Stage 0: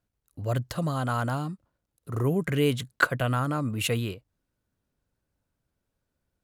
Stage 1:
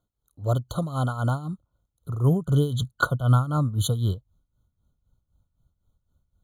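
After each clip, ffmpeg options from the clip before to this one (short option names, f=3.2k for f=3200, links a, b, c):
-af "asubboost=boost=5.5:cutoff=140,tremolo=f=3.9:d=0.76,afftfilt=real='re*eq(mod(floor(b*sr/1024/1500),2),0)':imag='im*eq(mod(floor(b*sr/1024/1500),2),0)':win_size=1024:overlap=0.75,volume=4dB"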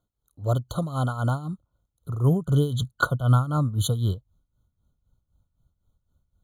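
-af anull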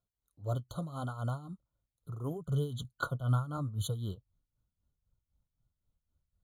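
-af "flanger=delay=1.6:depth=6.2:regen=-55:speed=0.79:shape=sinusoidal,volume=-7dB"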